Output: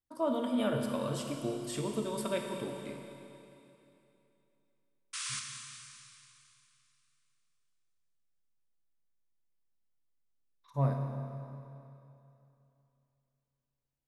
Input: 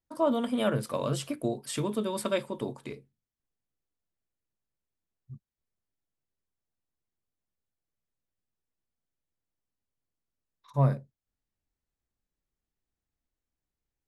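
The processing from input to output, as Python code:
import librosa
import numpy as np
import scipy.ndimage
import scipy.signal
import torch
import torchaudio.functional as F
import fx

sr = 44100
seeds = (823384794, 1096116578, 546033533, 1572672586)

y = fx.spec_paint(x, sr, seeds[0], shape='noise', start_s=5.13, length_s=0.27, low_hz=1000.0, high_hz=10000.0, level_db=-33.0)
y = fx.rev_schroeder(y, sr, rt60_s=2.9, comb_ms=25, drr_db=2.5)
y = y * 10.0 ** (-6.0 / 20.0)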